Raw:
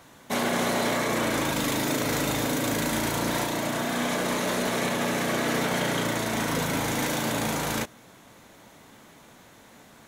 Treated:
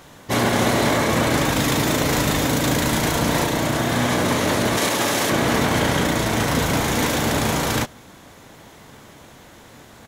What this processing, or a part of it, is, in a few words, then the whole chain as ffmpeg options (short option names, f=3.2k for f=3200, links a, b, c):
octave pedal: -filter_complex "[0:a]asettb=1/sr,asplit=3[a][b][c];[a]atrim=end=4.774[d];[b]atrim=start=4.77:end=5.3,asetpts=PTS-STARTPTS,afade=t=in:d=0.004:c=qsin,afade=t=out:st=0.526:d=0.004:c=qsin,bass=f=250:g=-14,treble=f=4k:g=6[e];[c]atrim=start=5.296[f];[d][e]acrossfade=d=0.004:c1=hsin:c2=qsin[g];[g][f]acrossfade=d=0.004:c1=qsin:c2=hsin,asplit=2[h][i];[i]asetrate=22050,aresample=44100,atempo=2,volume=-2dB[j];[h][j]amix=inputs=2:normalize=0,volume=5dB"